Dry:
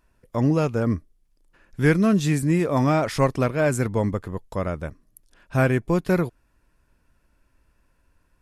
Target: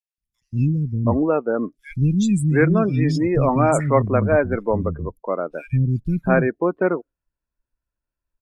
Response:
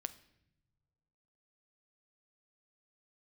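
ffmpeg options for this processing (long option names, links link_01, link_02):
-filter_complex "[0:a]acontrast=36,acrossover=split=240|2600[link_01][link_02][link_03];[link_01]adelay=180[link_04];[link_02]adelay=720[link_05];[link_04][link_05][link_03]amix=inputs=3:normalize=0,afftdn=noise_reduction=27:noise_floor=-28"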